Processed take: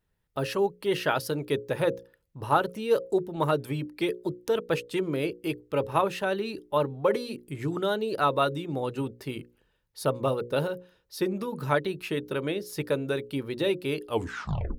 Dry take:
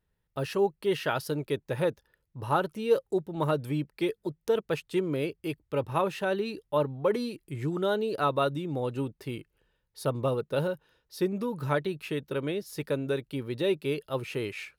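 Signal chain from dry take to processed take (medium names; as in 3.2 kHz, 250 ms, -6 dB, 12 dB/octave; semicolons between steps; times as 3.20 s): tape stop on the ending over 0.74 s; harmonic-percussive split percussive +4 dB; hum notches 60/120/180/240/300/360/420/480/540 Hz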